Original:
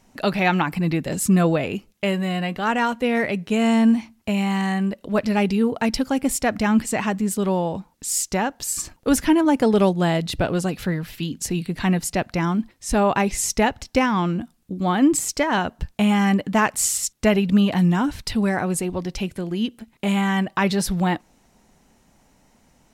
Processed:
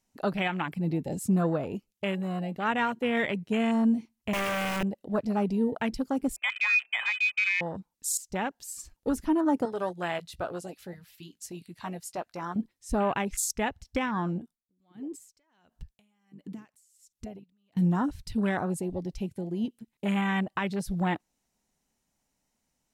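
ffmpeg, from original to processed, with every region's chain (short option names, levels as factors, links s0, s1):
-filter_complex "[0:a]asettb=1/sr,asplit=3[s0][s1][s2];[s0]atrim=end=4.334[s3];[s1]atrim=start=4.33:end=4.83,asetpts=PTS-STARTPTS,afade=t=in:d=0.004:c=qsin,afade=t=out:st=0.496:d=0.004:c=qsin,lowpass=f=5500:w=0.5412,lowpass=f=5500:w=1.3066,aeval=exprs='(mod(7.94*val(0)+1,2)-1)/7.94':c=same[s4];[s2]atrim=start=4.826[s5];[s3][s4]acrossfade=d=0.004:c1=hsin:c2=qsin[s6];[s6][s5]acrossfade=d=0.004:c1=qsin:c2=hsin,asettb=1/sr,asplit=3[s7][s8][s9];[s7]atrim=end=6.364[s10];[s8]atrim=start=6.36:end=7.61,asetpts=PTS-STARTPTS,afade=t=in:d=0.004:c=qsin,afade=t=out:st=1.246:d=0.004:c=qsin,aemphasis=mode=reproduction:type=75fm,lowpass=f=2300:t=q:w=0.5098,lowpass=f=2300:t=q:w=0.6013,lowpass=f=2300:t=q:w=0.9,lowpass=f=2300:t=q:w=2.563,afreqshift=-2700[s11];[s9]atrim=start=7.606[s12];[s10][s11]acrossfade=d=0.004:c1=hsin:c2=qsin[s13];[s13][s12]acrossfade=d=0.004:c1=qsin:c2=hsin,asettb=1/sr,asplit=3[s14][s15][s16];[s14]atrim=end=9.654[s17];[s15]atrim=start=9.65:end=12.56,asetpts=PTS-STARTPTS,afade=t=in:d=0.004:c=qsin,afade=t=out:st=2.906:d=0.004:c=qsin,highpass=62,equalizer=f=170:w=0.53:g=-14.5,asplit=2[s18][s19];[s19]adelay=17,volume=0.237[s20];[s18][s20]amix=inputs=2:normalize=0,atrim=end_sample=128331[s21];[s16]atrim=start=12.556[s22];[s17][s21]acrossfade=d=0.004:c1=hsin:c2=qsin[s23];[s23][s22]acrossfade=d=0.004:c1=qsin:c2=hsin,asettb=1/sr,asplit=3[s24][s25][s26];[s24]atrim=end=14.384[s27];[s25]atrim=start=14.38:end=17.77,asetpts=PTS-STARTPTS,afade=t=in:d=0.004:c=qsin,afade=t=out:st=3.386:d=0.004:c=qsin,acompressor=threshold=0.0355:ratio=5:attack=3.2:release=140:knee=1:detection=peak,aeval=exprs='val(0)*pow(10,-20*(0.5-0.5*cos(2*PI*1.4*n/s))/20)':c=same[s28];[s26]atrim=start=17.766[s29];[s27][s28]acrossfade=d=0.004:c1=hsin:c2=qsin[s30];[s30][s29]acrossfade=d=0.004:c1=qsin:c2=hsin,afwtdn=0.0447,highshelf=f=3000:g=10,alimiter=limit=0.299:level=0:latency=1:release=428,volume=0.473"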